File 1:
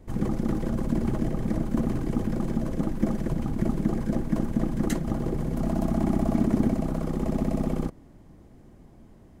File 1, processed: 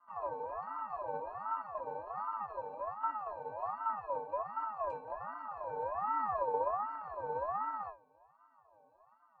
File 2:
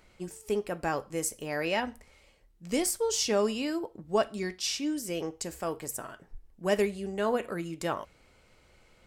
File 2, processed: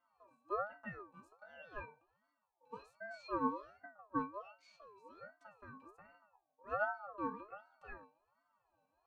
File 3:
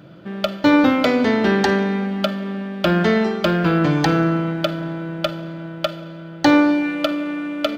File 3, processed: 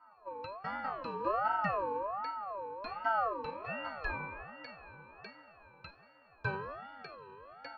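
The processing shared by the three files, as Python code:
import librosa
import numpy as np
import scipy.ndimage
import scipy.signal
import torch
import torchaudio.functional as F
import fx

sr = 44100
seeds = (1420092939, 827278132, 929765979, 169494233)

y = fx.octave_resonator(x, sr, note='G#', decay_s=0.26)
y = fx.ring_lfo(y, sr, carrier_hz=900.0, swing_pct=25, hz=1.3)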